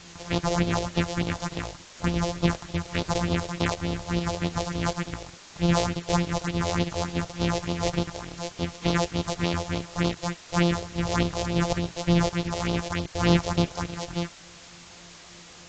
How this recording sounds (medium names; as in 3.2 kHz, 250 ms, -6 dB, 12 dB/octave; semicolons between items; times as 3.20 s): a buzz of ramps at a fixed pitch in blocks of 256 samples; phasing stages 4, 3.4 Hz, lowest notch 220–1800 Hz; a quantiser's noise floor 8-bit, dither triangular; AAC